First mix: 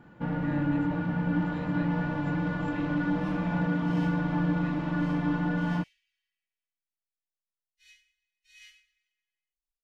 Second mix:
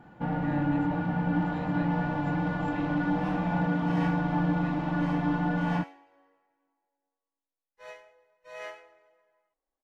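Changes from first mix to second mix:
second sound: remove inverse Chebyshev band-stop filter 130–910 Hz, stop band 60 dB
master: add parametric band 770 Hz +10.5 dB 0.3 octaves

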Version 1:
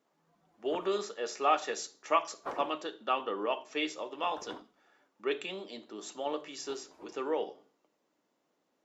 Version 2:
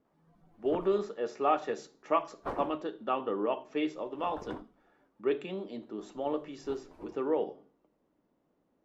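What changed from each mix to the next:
speech: add low-pass filter 1,300 Hz 6 dB per octave
master: remove high-pass filter 500 Hz 6 dB per octave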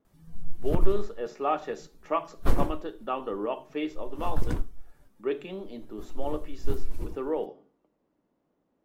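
background: remove resonant band-pass 810 Hz, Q 1.2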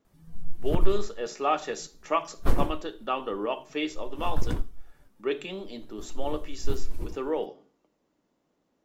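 speech: remove low-pass filter 1,300 Hz 6 dB per octave

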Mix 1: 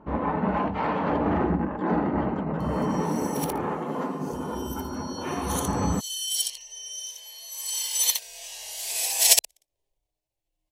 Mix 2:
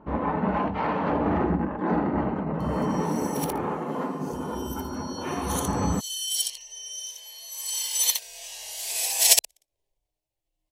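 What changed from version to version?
speech −7.0 dB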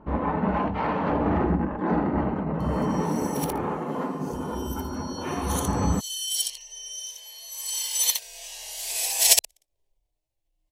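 master: add low-shelf EQ 66 Hz +9 dB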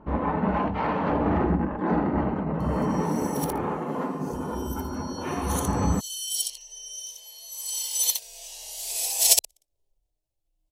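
second sound: add parametric band 1,700 Hz −10.5 dB 1.4 octaves

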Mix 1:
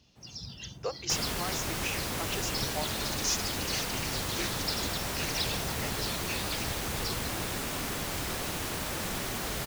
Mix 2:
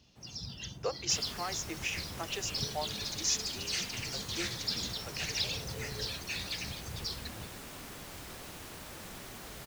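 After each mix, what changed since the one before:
second sound −12.0 dB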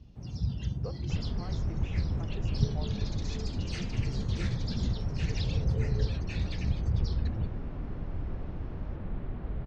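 speech −11.5 dB
second sound: add high-frequency loss of the air 410 metres
master: add spectral tilt −4.5 dB per octave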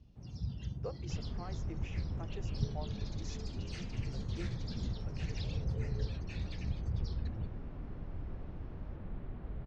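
first sound −7.5 dB
second sound −7.0 dB

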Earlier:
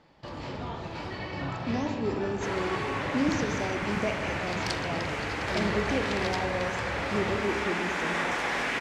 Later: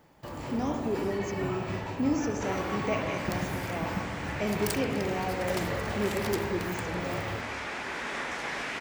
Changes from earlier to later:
speech: entry −1.15 s
first sound: remove low-pass with resonance 4,500 Hz, resonance Q 1.8
second sound: send −11.5 dB

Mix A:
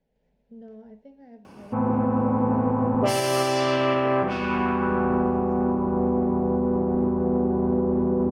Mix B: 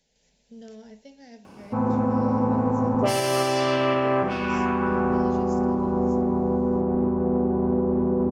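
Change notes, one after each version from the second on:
speech: remove Bessel low-pass filter 960 Hz, order 2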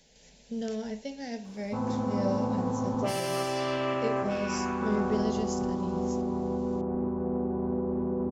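speech +10.0 dB
background −7.5 dB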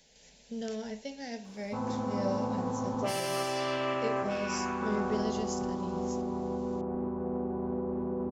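master: add low-shelf EQ 470 Hz −5 dB

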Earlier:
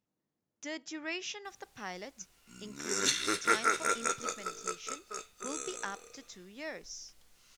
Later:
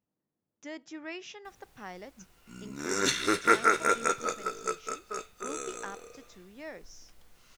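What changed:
background +7.5 dB
master: add parametric band 6,800 Hz −8.5 dB 2.9 octaves

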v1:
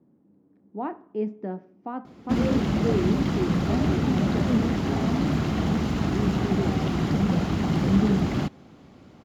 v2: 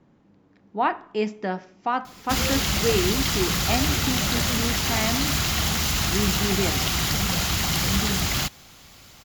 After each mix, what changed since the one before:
background −9.5 dB
master: remove resonant band-pass 270 Hz, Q 1.2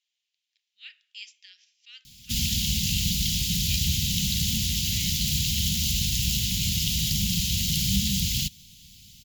speech: add high-pass filter 1,400 Hz 24 dB per octave
master: add elliptic band-stop filter 200–3,000 Hz, stop band 80 dB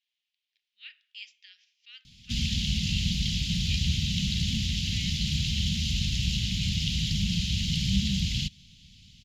master: add low-pass filter 3,900 Hz 12 dB per octave

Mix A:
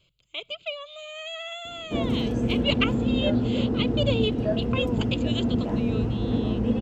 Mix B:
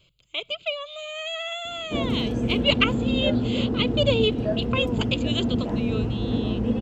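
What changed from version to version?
speech +4.5 dB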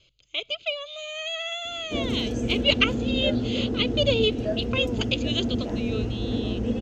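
speech: add Butterworth low-pass 6,600 Hz 72 dB per octave
master: add graphic EQ with 15 bands 160 Hz −9 dB, 1,000 Hz −7 dB, 6,300 Hz +9 dB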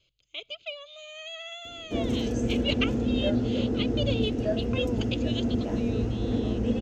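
speech −8.5 dB

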